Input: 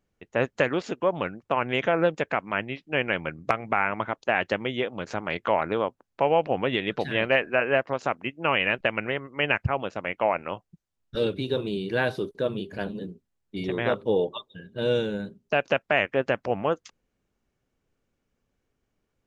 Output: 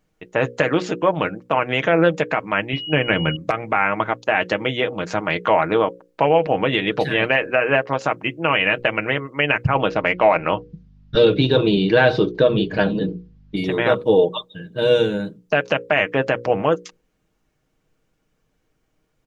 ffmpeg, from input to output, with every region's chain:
-filter_complex "[0:a]asettb=1/sr,asplit=3[a][b][c];[a]atrim=end=2.734[d];[b]atrim=start=2.73:end=3.36,asetpts=PTS-STARTPTS,afade=t=in:d=0.004:c=qsin,afade=t=out:st=0.626:d=0.004:c=qsin,aeval=exprs='val(0)+0.0282*sin(2*PI*2900*n/s)':c=same,lowshelf=f=310:g=9[e];[c]atrim=start=3.356[f];[d][e]acrossfade=d=0.004:c1=hsin:c2=qsin[g];[g][f]acrossfade=d=0.004:c1=qsin:c2=hsin,asettb=1/sr,asplit=3[h][i][j];[h]atrim=end=9.754[k];[i]atrim=start=9.75:end=13.56,asetpts=PTS-STARTPTS,afade=t=in:d=0.004:c=qsin,afade=t=out:st=3.806:d=0.004:c=qsin,lowpass=f=5.1k:w=0.5412,lowpass=f=5.1k:w=1.3066,acontrast=43,aeval=exprs='val(0)+0.00178*(sin(2*PI*50*n/s)+sin(2*PI*2*50*n/s)/2+sin(2*PI*3*50*n/s)/3+sin(2*PI*4*50*n/s)/4+sin(2*PI*5*50*n/s)/5)':c=same[l];[j]atrim=start=13.556[m];[k][l]acrossfade=d=0.004:c1=hsin:c2=qsin[n];[n][m]acrossfade=d=0.004:c1=qsin:c2=hsin,bandreject=f=60:t=h:w=6,bandreject=f=120:t=h:w=6,bandreject=f=180:t=h:w=6,bandreject=f=240:t=h:w=6,bandreject=f=300:t=h:w=6,bandreject=f=360:t=h:w=6,bandreject=f=420:t=h:w=6,bandreject=f=480:t=h:w=6,bandreject=f=540:t=h:w=6,aecho=1:1:6.4:0.45,alimiter=limit=-12.5dB:level=0:latency=1:release=74,volume=7.5dB"

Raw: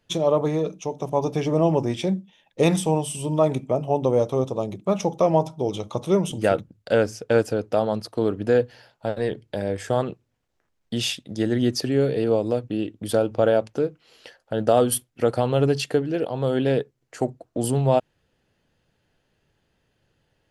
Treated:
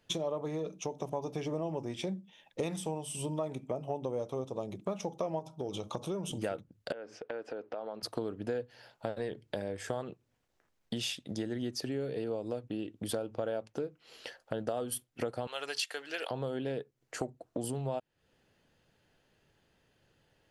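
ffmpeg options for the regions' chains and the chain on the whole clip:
-filter_complex "[0:a]asettb=1/sr,asplit=3[a][b][c];[a]atrim=end=5.394[d];[b]atrim=start=5.39:end=6.32,asetpts=PTS-STARTPTS,afade=t=in:d=0.004:c=qsin,afade=t=out:st=0.926:d=0.004:c=qsin,bandreject=f=2k:w=5.8,acompressor=threshold=-25dB:ratio=2:attack=3.2:release=140:knee=1:detection=peak[e];[c]atrim=start=6.316[f];[d][e]acrossfade=d=0.004:c1=hsin:c2=qsin[g];[g][f]acrossfade=d=0.004:c1=qsin:c2=hsin,asettb=1/sr,asplit=3[h][i][j];[h]atrim=end=6.924[k];[i]atrim=start=6.92:end=8.03,asetpts=PTS-STARTPTS,afade=t=in:d=0.004:c=qsin,afade=t=out:st=1.106:d=0.004:c=qsin,highpass=340,lowpass=2.5k,acompressor=threshold=-37dB:ratio=4:attack=3.2:release=140:knee=1:detection=peak[l];[j]atrim=start=8.026[m];[k][l]acrossfade=d=0.004:c1=hsin:c2=qsin[n];[n][m]acrossfade=d=0.004:c1=qsin:c2=hsin,asettb=1/sr,asplit=3[o][p][q];[o]atrim=end=15.474[r];[p]atrim=start=15.47:end=16.31,asetpts=PTS-STARTPTS,afade=t=in:d=0.004:c=qsin,afade=t=out:st=0.836:d=0.004:c=qsin,highpass=1.4k,acontrast=76[s];[q]atrim=start=16.306[t];[r][s]acrossfade=d=0.004:c1=hsin:c2=qsin[u];[u][t]acrossfade=d=0.004:c1=qsin:c2=hsin,acompressor=threshold=-33dB:ratio=5,lowshelf=f=160:g=-4.5"

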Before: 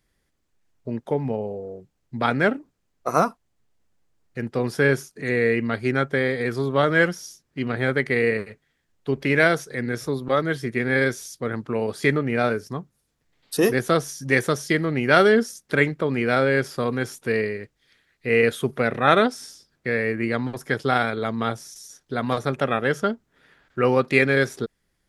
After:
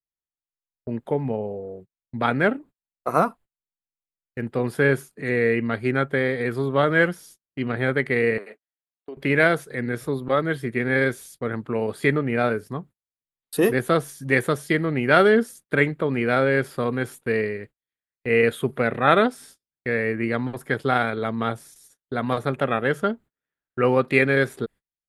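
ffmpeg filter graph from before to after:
-filter_complex "[0:a]asettb=1/sr,asplit=3[a][b][c];[a]atrim=end=8.384[d];[b]atrim=start=8.38:end=9.17,asetpts=PTS-STARTPTS,afade=t=in:d=0.004:c=qsin,afade=t=out:st=0.786:d=0.004:c=qsin,highpass=f=260:w=0.5412,highpass=f=260:w=1.3066,equalizer=f=680:w=3.8:g=7,acompressor=threshold=-33dB:ratio=6:attack=3.2:release=140:knee=1:detection=peak[e];[c]atrim=start=9.166[f];[d][e]acrossfade=d=0.004:c1=hsin:c2=qsin[g];[g][f]acrossfade=d=0.004:c1=qsin:c2=hsin,agate=range=-33dB:threshold=-42dB:ratio=16:detection=peak,equalizer=f=5.7k:w=2.3:g=-14.5"

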